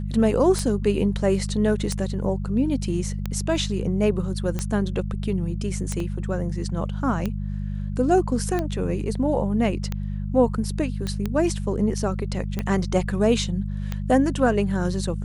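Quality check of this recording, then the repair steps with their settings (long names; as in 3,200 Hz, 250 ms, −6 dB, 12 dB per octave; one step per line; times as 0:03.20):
mains hum 50 Hz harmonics 4 −28 dBFS
scratch tick 45 rpm −13 dBFS
0:06.00: drop-out 2.3 ms
0:11.07: click −16 dBFS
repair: click removal
hum removal 50 Hz, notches 4
repair the gap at 0:06.00, 2.3 ms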